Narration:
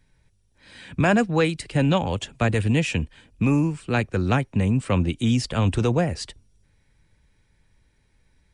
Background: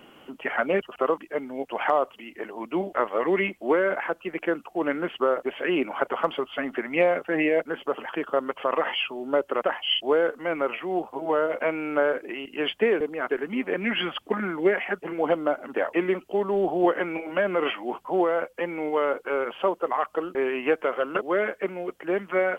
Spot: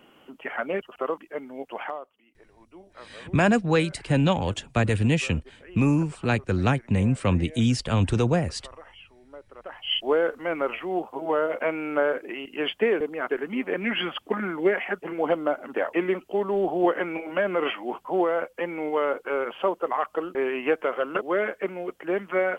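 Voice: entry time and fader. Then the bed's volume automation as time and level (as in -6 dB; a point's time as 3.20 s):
2.35 s, -1.0 dB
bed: 1.79 s -4.5 dB
2.11 s -21.5 dB
9.55 s -21.5 dB
9.95 s -0.5 dB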